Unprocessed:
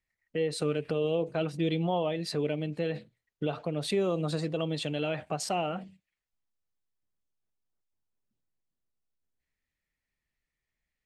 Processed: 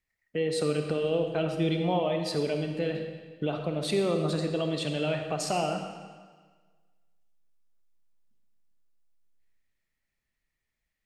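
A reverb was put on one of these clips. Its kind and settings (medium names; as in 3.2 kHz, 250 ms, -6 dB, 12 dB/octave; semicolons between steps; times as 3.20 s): algorithmic reverb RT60 1.5 s, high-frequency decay 0.95×, pre-delay 10 ms, DRR 4.5 dB; trim +1 dB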